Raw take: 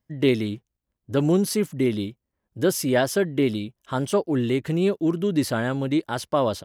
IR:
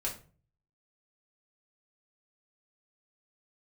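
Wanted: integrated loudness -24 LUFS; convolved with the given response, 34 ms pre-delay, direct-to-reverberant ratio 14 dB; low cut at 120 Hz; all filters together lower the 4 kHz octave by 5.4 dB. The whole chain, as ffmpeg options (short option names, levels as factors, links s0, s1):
-filter_complex "[0:a]highpass=120,equalizer=f=4000:t=o:g=-7.5,asplit=2[s0][s1];[1:a]atrim=start_sample=2205,adelay=34[s2];[s1][s2]afir=irnorm=-1:irlink=0,volume=0.15[s3];[s0][s3]amix=inputs=2:normalize=0"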